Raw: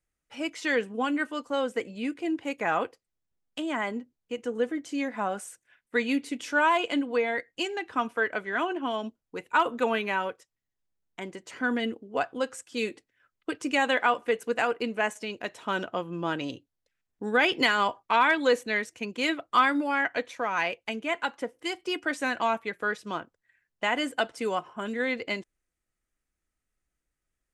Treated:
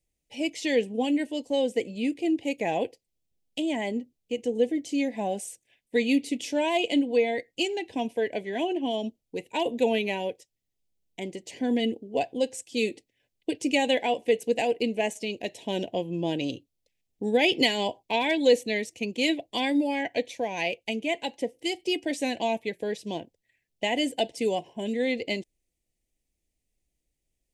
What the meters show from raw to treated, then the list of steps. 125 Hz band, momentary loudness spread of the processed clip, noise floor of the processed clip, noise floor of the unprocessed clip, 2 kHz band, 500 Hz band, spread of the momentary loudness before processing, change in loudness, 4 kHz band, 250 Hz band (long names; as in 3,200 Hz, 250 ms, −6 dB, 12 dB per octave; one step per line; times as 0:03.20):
+4.0 dB, 10 LU, −82 dBFS, −85 dBFS, −5.0 dB, +3.5 dB, 12 LU, +0.5 dB, +3.5 dB, +4.0 dB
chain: Butterworth band-reject 1,300 Hz, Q 0.8
level +4 dB